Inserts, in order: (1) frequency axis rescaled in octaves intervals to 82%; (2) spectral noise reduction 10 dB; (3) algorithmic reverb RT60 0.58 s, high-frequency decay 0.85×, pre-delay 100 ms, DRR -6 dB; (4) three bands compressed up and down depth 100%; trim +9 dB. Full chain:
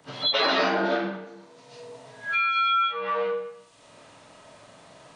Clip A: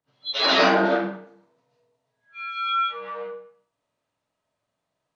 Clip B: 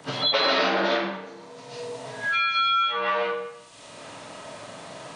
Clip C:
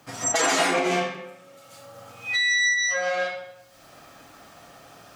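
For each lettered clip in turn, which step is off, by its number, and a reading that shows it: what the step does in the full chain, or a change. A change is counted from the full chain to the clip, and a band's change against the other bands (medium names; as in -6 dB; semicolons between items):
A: 4, crest factor change +4.5 dB; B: 2, 250 Hz band -2.0 dB; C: 1, 2 kHz band +5.5 dB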